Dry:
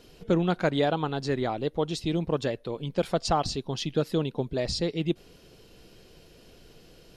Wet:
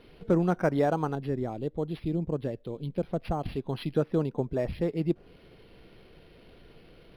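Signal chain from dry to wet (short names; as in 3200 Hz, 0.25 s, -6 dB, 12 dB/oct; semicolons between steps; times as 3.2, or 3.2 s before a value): 1.15–3.46 bell 1400 Hz -11 dB 2.6 oct; treble ducked by the level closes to 1900 Hz, closed at -26 dBFS; decimation joined by straight lines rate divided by 6×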